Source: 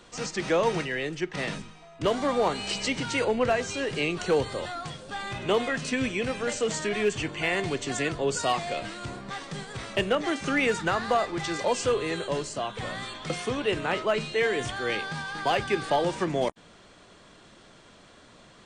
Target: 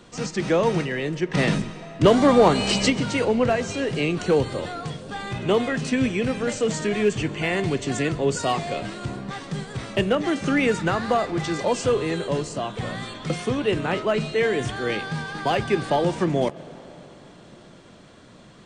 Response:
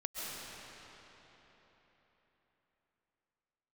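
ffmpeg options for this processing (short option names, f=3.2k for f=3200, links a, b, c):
-filter_complex "[0:a]equalizer=f=160:w=0.47:g=8,asplit=3[a][b][c];[a]afade=t=out:st=1.3:d=0.02[d];[b]acontrast=60,afade=t=in:st=1.3:d=0.02,afade=t=out:st=2.89:d=0.02[e];[c]afade=t=in:st=2.89:d=0.02[f];[d][e][f]amix=inputs=3:normalize=0,asplit=2[g][h];[1:a]atrim=start_sample=2205[i];[h][i]afir=irnorm=-1:irlink=0,volume=-19dB[j];[g][j]amix=inputs=2:normalize=0"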